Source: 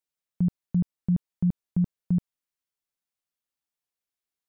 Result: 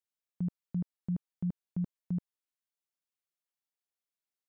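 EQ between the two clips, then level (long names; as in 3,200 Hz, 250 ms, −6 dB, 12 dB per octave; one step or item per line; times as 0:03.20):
low-shelf EQ 120 Hz −10.5 dB
−6.0 dB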